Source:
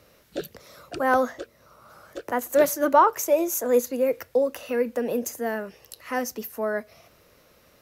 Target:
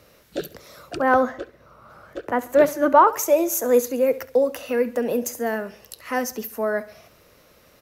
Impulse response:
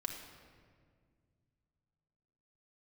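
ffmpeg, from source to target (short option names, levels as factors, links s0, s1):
-filter_complex "[0:a]asettb=1/sr,asplit=3[s0][s1][s2];[s0]atrim=end=0.974[s3];[s1]atrim=start=0.97:end=3.07,asetpts=PTS-STARTPTS,afade=t=in:d=0.004:c=qsin,afade=t=out:st=2.096:d=0.004:c=qsin,bass=f=250:g=3,treble=f=4000:g=-11[s4];[s2]atrim=start=3.066[s5];[s3][s4]acrossfade=d=0.004:c1=hsin:c2=qsin[s6];[s6][s5]acrossfade=d=0.004:c1=qsin:c2=hsin,aecho=1:1:68|136|204|272:0.126|0.0567|0.0255|0.0115,volume=1.41"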